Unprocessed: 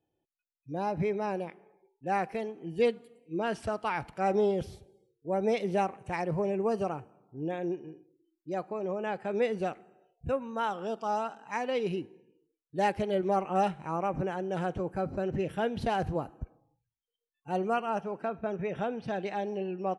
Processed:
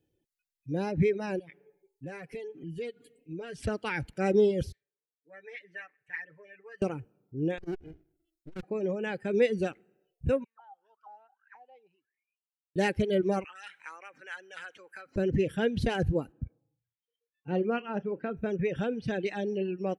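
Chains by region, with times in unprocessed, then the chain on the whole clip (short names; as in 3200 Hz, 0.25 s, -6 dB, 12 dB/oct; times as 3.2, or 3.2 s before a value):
1.39–3.63 comb 7 ms, depth 62% + compressor 2.5:1, threshold -45 dBFS
4.72–6.82 band-pass 1800 Hz, Q 7.7 + comb 6.8 ms, depth 92%
7.58–8.63 minimum comb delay 0.74 ms + core saturation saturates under 360 Hz
10.44–12.76 LPF 5900 Hz + bell 290 Hz -12 dB 2.1 oct + auto-wah 780–2800 Hz, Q 18, down, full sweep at -34.5 dBFS
13.44–15.16 compressor 10:1, threshold -32 dBFS + resonant high-pass 1400 Hz, resonance Q 1.6
16.32–18.37 HPF 96 Hz + air absorption 260 m + doubler 34 ms -12 dB
whole clip: band shelf 900 Hz -11 dB 1.2 oct; reverb removal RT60 0.81 s; low shelf 130 Hz +5.5 dB; gain +4.5 dB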